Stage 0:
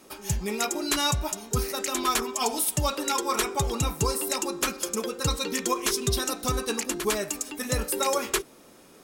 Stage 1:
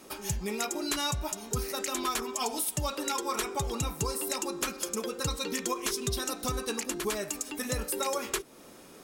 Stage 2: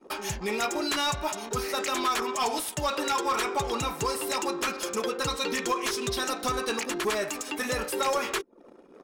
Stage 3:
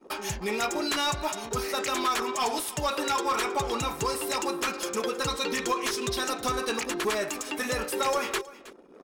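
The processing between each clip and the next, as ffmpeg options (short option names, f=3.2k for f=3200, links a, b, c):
-af "acompressor=threshold=-35dB:ratio=2,volume=1.5dB"
-filter_complex "[0:a]anlmdn=0.0158,asplit=2[a][b];[b]highpass=f=720:p=1,volume=17dB,asoftclip=type=tanh:threshold=-16dB[c];[a][c]amix=inputs=2:normalize=0,lowpass=f=2.8k:p=1,volume=-6dB"
-af "aecho=1:1:318:0.119"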